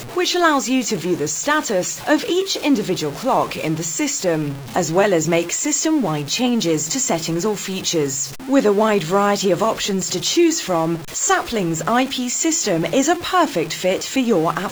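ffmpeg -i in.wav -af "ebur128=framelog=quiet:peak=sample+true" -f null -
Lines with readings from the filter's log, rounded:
Integrated loudness:
  I:         -18.7 LUFS
  Threshold: -28.7 LUFS
Loudness range:
  LRA:         1.6 LU
  Threshold: -38.7 LUFS
  LRA low:   -19.5 LUFS
  LRA high:  -17.9 LUFS
Sample peak:
  Peak:       -3.0 dBFS
True peak:
  Peak:       -3.0 dBFS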